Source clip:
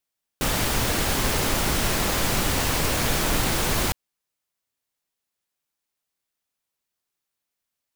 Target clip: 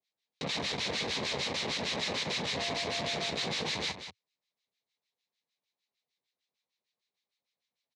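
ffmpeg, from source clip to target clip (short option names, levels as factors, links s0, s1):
-filter_complex "[0:a]acrossover=split=1300[s0][s1];[s0]aeval=exprs='val(0)*(1-1/2+1/2*cos(2*PI*6.6*n/s))':c=same[s2];[s1]aeval=exprs='val(0)*(1-1/2-1/2*cos(2*PI*6.6*n/s))':c=same[s3];[s2][s3]amix=inputs=2:normalize=0,asettb=1/sr,asplit=3[s4][s5][s6];[s4]atrim=end=2.574[s7];[s5]atrim=start=2.57:end=3.3,asetpts=PTS-STARTPTS,afade=t=in:d=0.004:c=qsin,afade=t=out:st=0.726:d=0.004:c=qsin,aeval=exprs='val(0)+0.0251*sin(2*PI*690*n/s)':c=same[s8];[s6]atrim=start=3.296[s9];[s7][s8]acrossfade=d=0.004:c1=hsin:c2=qsin[s10];[s10][s9]acrossfade=d=0.004:c1=qsin:c2=hsin,volume=44.7,asoftclip=hard,volume=0.0224,highpass=f=100:w=0.5412,highpass=f=100:w=1.3066,equalizer=f=110:t=q:w=4:g=-8,equalizer=f=320:t=q:w=4:g=-5,equalizer=f=470:t=q:w=4:g=4,equalizer=f=1400:t=q:w=4:g=-9,equalizer=f=2200:t=q:w=4:g=5,equalizer=f=3900:t=q:w=4:g=9,lowpass=f=6000:w=0.5412,lowpass=f=6000:w=1.3066,aecho=1:1:186:0.316,volume=1.19"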